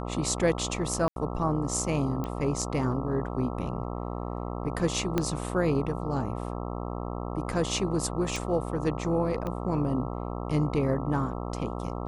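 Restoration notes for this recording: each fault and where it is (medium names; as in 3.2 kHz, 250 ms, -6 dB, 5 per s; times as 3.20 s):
buzz 60 Hz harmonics 22 -34 dBFS
1.08–1.16 s: dropout 82 ms
2.24 s: pop -20 dBFS
5.18 s: pop -12 dBFS
8.36 s: pop
9.47 s: pop -21 dBFS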